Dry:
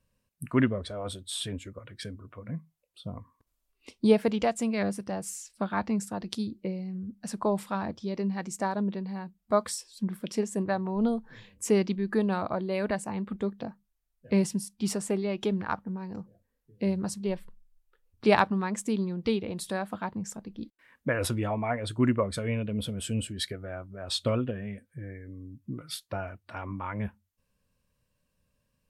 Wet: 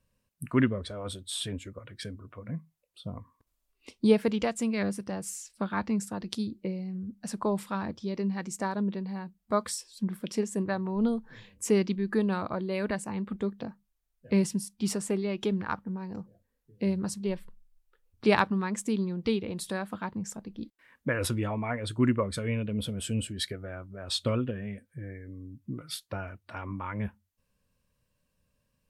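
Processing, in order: dynamic bell 700 Hz, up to -6 dB, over -45 dBFS, Q 2.5

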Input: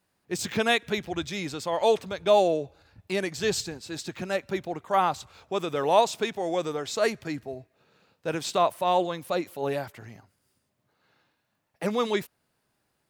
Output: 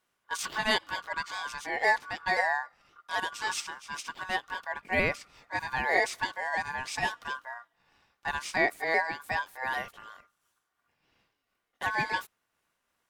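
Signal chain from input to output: sawtooth pitch modulation -2 st, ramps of 263 ms; ring modulator 1.3 kHz

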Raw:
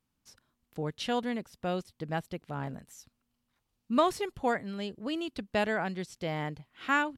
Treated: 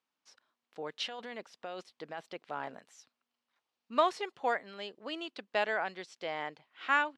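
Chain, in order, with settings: 0.88–2.89 s: compressor with a negative ratio -35 dBFS, ratio -1; band-pass 520–5000 Hz

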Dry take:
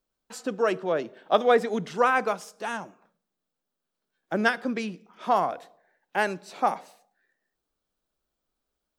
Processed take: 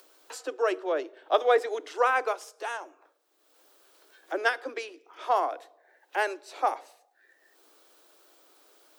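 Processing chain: steep high-pass 290 Hz 96 dB/octave; upward compressor, threshold -36 dBFS; trim -2 dB

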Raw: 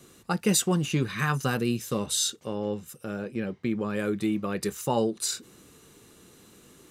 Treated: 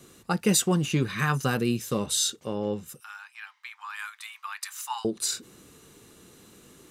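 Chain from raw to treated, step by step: 3.00–5.05 s: steep high-pass 870 Hz 72 dB/octave; trim +1 dB

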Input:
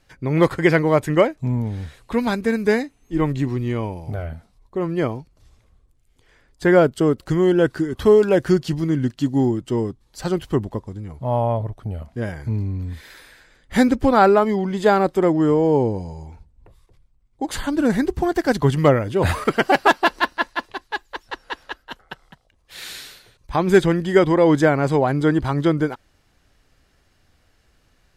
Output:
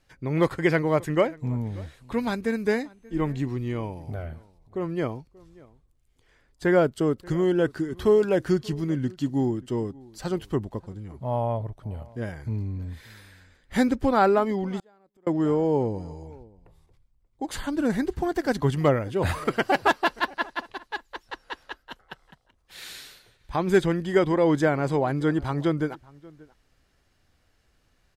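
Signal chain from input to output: echo from a far wall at 100 m, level -23 dB; 14.79–15.27 s: inverted gate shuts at -21 dBFS, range -37 dB; trim -6 dB

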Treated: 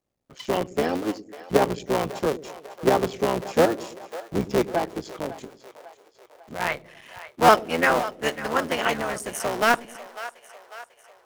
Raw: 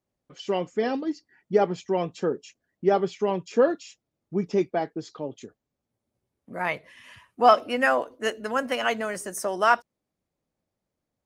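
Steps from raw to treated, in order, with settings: cycle switcher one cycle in 3, muted; on a send: two-band feedback delay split 470 Hz, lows 107 ms, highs 547 ms, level -15 dB; on the sum: trim +3 dB

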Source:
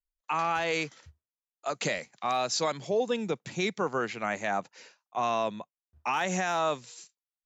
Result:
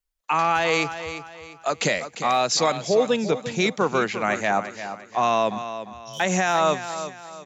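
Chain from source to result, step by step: 5.58–6.20 s: brick-wall FIR band-stop 190–3000 Hz; feedback delay 349 ms, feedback 35%, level -11 dB; trim +7.5 dB

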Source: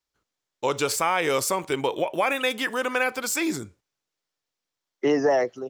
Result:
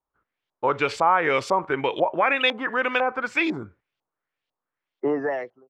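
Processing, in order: fade out at the end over 0.87 s; LFO low-pass saw up 2 Hz 820–3500 Hz

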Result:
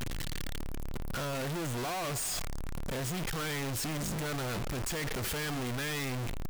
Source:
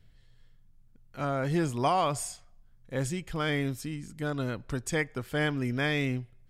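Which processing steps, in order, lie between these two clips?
one-bit comparator; trim -2.5 dB

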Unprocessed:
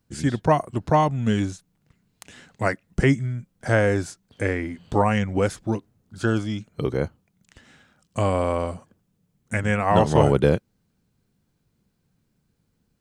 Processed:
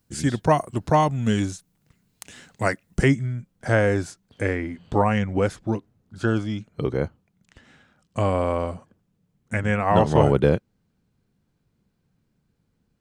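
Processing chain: treble shelf 5.3 kHz +7 dB, from 3.08 s -3 dB, from 4.56 s -8 dB

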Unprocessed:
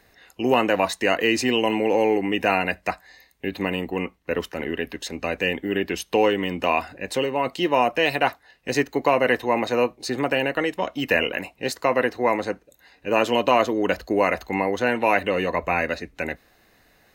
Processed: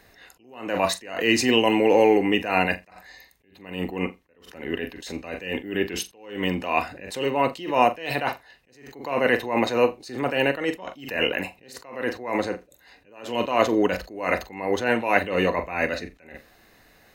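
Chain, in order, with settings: flutter echo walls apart 7.4 m, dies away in 0.2 s; attacks held to a fixed rise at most 100 dB/s; trim +2.5 dB

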